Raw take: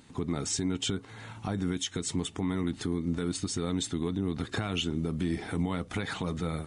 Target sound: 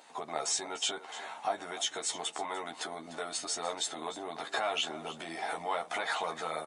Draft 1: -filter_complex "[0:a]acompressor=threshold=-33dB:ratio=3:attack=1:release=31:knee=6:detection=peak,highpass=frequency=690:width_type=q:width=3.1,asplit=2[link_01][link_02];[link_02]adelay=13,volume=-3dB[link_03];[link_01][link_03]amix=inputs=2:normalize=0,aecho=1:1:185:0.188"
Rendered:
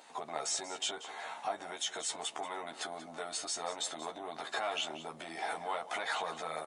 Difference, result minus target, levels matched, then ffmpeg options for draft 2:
echo 113 ms early; downward compressor: peak gain reduction +4.5 dB
-filter_complex "[0:a]acompressor=threshold=-25.5dB:ratio=3:attack=1:release=31:knee=6:detection=peak,highpass=frequency=690:width_type=q:width=3.1,asplit=2[link_01][link_02];[link_02]adelay=13,volume=-3dB[link_03];[link_01][link_03]amix=inputs=2:normalize=0,aecho=1:1:298:0.188"

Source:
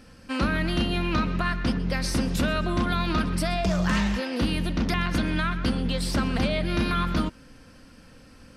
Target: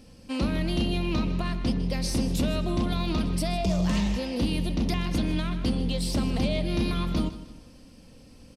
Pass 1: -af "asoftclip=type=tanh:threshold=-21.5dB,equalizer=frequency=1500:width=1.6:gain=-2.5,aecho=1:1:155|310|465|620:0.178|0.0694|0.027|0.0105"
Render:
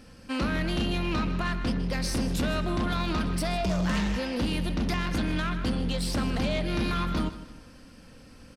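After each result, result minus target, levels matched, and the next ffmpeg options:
soft clipping: distortion +12 dB; 2,000 Hz band +5.5 dB
-af "asoftclip=type=tanh:threshold=-13.5dB,equalizer=frequency=1500:width=1.6:gain=-2.5,aecho=1:1:155|310|465|620:0.178|0.0694|0.027|0.0105"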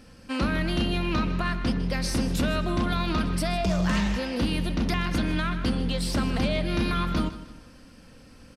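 2,000 Hz band +5.5 dB
-af "asoftclip=type=tanh:threshold=-13.5dB,equalizer=frequency=1500:width=1.6:gain=-14,aecho=1:1:155|310|465|620:0.178|0.0694|0.027|0.0105"

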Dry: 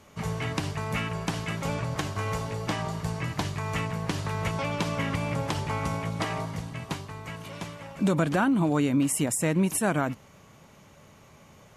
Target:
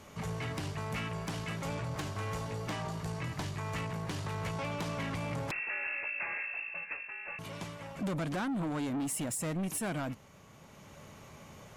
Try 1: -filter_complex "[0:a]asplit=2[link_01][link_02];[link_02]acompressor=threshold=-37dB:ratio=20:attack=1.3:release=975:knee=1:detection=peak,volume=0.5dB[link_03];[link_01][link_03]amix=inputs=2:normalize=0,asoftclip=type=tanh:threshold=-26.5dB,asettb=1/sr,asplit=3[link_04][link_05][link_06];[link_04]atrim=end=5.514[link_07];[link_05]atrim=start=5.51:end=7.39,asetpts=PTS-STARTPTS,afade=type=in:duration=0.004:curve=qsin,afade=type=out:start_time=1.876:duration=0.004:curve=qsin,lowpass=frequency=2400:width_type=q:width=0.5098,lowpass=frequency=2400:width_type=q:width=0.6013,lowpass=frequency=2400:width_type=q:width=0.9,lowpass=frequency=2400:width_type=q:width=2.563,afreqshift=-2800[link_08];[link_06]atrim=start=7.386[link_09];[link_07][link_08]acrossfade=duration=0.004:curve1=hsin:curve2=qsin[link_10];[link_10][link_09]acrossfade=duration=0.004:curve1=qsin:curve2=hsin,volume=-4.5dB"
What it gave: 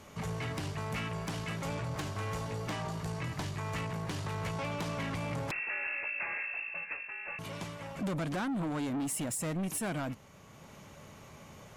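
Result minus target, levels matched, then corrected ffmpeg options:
downward compressor: peak gain reduction −6.5 dB
-filter_complex "[0:a]asplit=2[link_01][link_02];[link_02]acompressor=threshold=-44dB:ratio=20:attack=1.3:release=975:knee=1:detection=peak,volume=0.5dB[link_03];[link_01][link_03]amix=inputs=2:normalize=0,asoftclip=type=tanh:threshold=-26.5dB,asettb=1/sr,asplit=3[link_04][link_05][link_06];[link_04]atrim=end=5.514[link_07];[link_05]atrim=start=5.51:end=7.39,asetpts=PTS-STARTPTS,afade=type=in:duration=0.004:curve=qsin,afade=type=out:start_time=1.876:duration=0.004:curve=qsin,lowpass=frequency=2400:width_type=q:width=0.5098,lowpass=frequency=2400:width_type=q:width=0.6013,lowpass=frequency=2400:width_type=q:width=0.9,lowpass=frequency=2400:width_type=q:width=2.563,afreqshift=-2800[link_08];[link_06]atrim=start=7.386[link_09];[link_07][link_08]acrossfade=duration=0.004:curve1=hsin:curve2=qsin[link_10];[link_10][link_09]acrossfade=duration=0.004:curve1=qsin:curve2=hsin,volume=-4.5dB"

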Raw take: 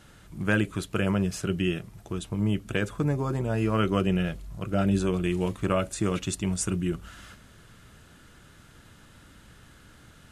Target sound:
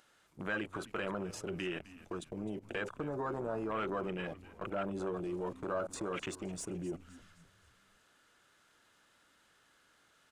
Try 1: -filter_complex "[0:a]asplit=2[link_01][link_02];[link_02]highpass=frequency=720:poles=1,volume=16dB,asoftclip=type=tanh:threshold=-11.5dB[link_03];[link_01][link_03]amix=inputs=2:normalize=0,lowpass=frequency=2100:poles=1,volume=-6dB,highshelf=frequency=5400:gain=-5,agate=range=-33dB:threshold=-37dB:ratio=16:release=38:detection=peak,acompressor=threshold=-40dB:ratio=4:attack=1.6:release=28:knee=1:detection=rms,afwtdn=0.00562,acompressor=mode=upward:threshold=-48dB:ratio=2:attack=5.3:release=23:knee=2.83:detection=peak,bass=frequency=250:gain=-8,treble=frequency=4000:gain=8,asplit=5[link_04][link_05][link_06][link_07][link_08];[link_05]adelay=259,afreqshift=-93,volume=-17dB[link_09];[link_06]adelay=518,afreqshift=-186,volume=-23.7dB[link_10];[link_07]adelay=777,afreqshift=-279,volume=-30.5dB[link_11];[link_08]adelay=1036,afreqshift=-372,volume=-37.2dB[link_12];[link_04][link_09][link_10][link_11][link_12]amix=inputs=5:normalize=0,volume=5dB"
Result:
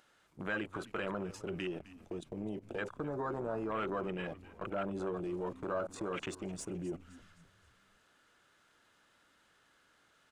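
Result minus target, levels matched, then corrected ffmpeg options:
8,000 Hz band −3.5 dB
-filter_complex "[0:a]asplit=2[link_01][link_02];[link_02]highpass=frequency=720:poles=1,volume=16dB,asoftclip=type=tanh:threshold=-11.5dB[link_03];[link_01][link_03]amix=inputs=2:normalize=0,lowpass=frequency=2100:poles=1,volume=-6dB,agate=range=-33dB:threshold=-37dB:ratio=16:release=38:detection=peak,acompressor=threshold=-40dB:ratio=4:attack=1.6:release=28:knee=1:detection=rms,afwtdn=0.00562,acompressor=mode=upward:threshold=-48dB:ratio=2:attack=5.3:release=23:knee=2.83:detection=peak,bass=frequency=250:gain=-8,treble=frequency=4000:gain=8,asplit=5[link_04][link_05][link_06][link_07][link_08];[link_05]adelay=259,afreqshift=-93,volume=-17dB[link_09];[link_06]adelay=518,afreqshift=-186,volume=-23.7dB[link_10];[link_07]adelay=777,afreqshift=-279,volume=-30.5dB[link_11];[link_08]adelay=1036,afreqshift=-372,volume=-37.2dB[link_12];[link_04][link_09][link_10][link_11][link_12]amix=inputs=5:normalize=0,volume=5dB"

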